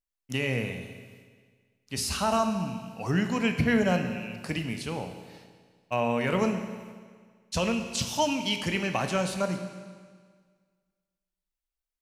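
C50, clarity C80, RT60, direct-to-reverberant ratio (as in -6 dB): 7.5 dB, 9.0 dB, 1.7 s, 6.0 dB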